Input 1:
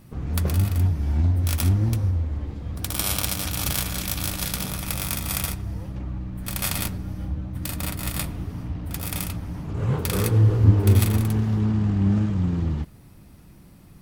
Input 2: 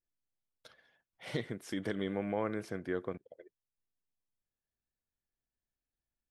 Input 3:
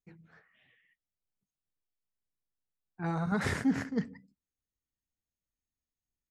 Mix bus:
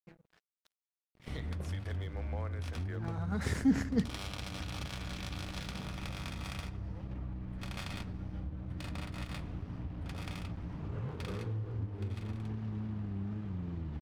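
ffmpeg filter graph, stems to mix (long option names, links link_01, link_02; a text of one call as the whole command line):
ffmpeg -i stem1.wav -i stem2.wav -i stem3.wav -filter_complex "[0:a]lowpass=3900,acompressor=threshold=-29dB:ratio=6,adelay=1150,volume=-6dB[link_01];[1:a]highpass=540,volume=-5.5dB,asplit=2[link_02][link_03];[2:a]volume=2.5dB[link_04];[link_03]apad=whole_len=277881[link_05];[link_04][link_05]sidechaincompress=threshold=-54dB:ratio=8:attack=34:release=677[link_06];[link_01][link_02][link_06]amix=inputs=3:normalize=0,acrossover=split=430|3000[link_07][link_08][link_09];[link_08]acompressor=threshold=-41dB:ratio=6[link_10];[link_07][link_10][link_09]amix=inputs=3:normalize=0,aeval=exprs='sgn(val(0))*max(abs(val(0))-0.002,0)':channel_layout=same" out.wav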